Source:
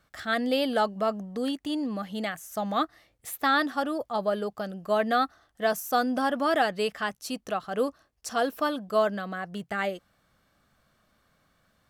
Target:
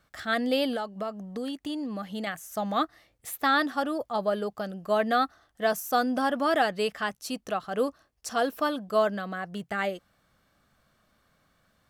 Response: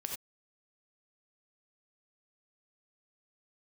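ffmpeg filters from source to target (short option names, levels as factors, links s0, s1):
-filter_complex "[0:a]asettb=1/sr,asplit=3[s0][s1][s2];[s0]atrim=end=0.744[s3];[s1]atrim=start=0.74:end=2.27,asetpts=PTS-STARTPTS,afade=t=in:d=0.004:c=qsin,afade=t=out:st=1.526:d=0.004:c=qsin,acompressor=threshold=0.0316:ratio=5[s4];[s2]atrim=start=2.266[s5];[s3][s4]acrossfade=d=0.004:c1=hsin:c2=qsin[s6];[s6][s5]acrossfade=d=0.004:c1=qsin:c2=hsin"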